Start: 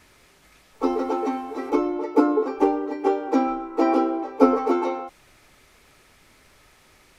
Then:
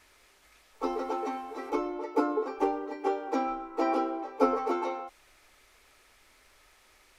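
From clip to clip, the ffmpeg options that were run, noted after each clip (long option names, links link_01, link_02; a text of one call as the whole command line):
ffmpeg -i in.wav -af "equalizer=frequency=150:width=0.74:gain=-13.5,volume=-4.5dB" out.wav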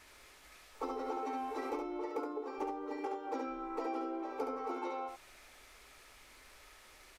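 ffmpeg -i in.wav -af "acompressor=threshold=-38dB:ratio=10,aecho=1:1:70:0.562,volume=1.5dB" out.wav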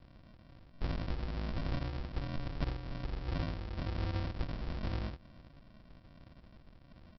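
ffmpeg -i in.wav -filter_complex "[0:a]acrossover=split=1100[link_01][link_02];[link_01]aeval=exprs='val(0)*(1-0.5/2+0.5/2*cos(2*PI*1.2*n/s))':channel_layout=same[link_03];[link_02]aeval=exprs='val(0)*(1-0.5/2-0.5/2*cos(2*PI*1.2*n/s))':channel_layout=same[link_04];[link_03][link_04]amix=inputs=2:normalize=0,aresample=11025,acrusher=samples=26:mix=1:aa=0.000001,aresample=44100,volume=5.5dB" out.wav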